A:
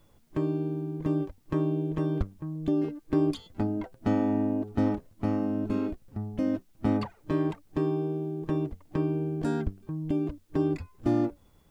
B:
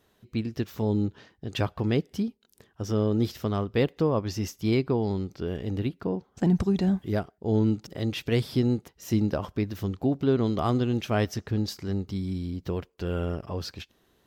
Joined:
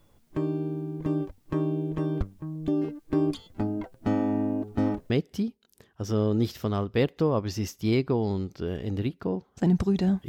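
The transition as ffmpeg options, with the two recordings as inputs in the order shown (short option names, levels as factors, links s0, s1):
-filter_complex "[0:a]apad=whole_dur=10.28,atrim=end=10.28,atrim=end=5.102[s0];[1:a]atrim=start=1.898:end=7.08[s1];[s0][s1]acrossfade=d=0.004:c1=hsin:c2=hsin"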